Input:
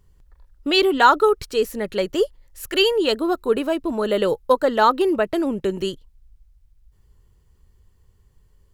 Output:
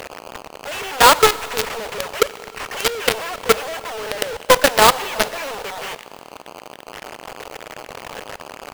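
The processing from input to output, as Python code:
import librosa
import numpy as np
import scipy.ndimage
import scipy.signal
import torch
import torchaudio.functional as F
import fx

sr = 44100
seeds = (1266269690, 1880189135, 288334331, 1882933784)

y = fx.delta_mod(x, sr, bps=16000, step_db=-18.5)
y = fx.brickwall_highpass(y, sr, low_hz=410.0)
y = fx.quant_companded(y, sr, bits=2)
y = fx.rev_schroeder(y, sr, rt60_s=2.9, comb_ms=30, drr_db=16.5)
y = fx.buffer_crackle(y, sr, first_s=0.31, period_s=0.12, block=64, kind='zero')
y = y * 10.0 ** (-2.5 / 20.0)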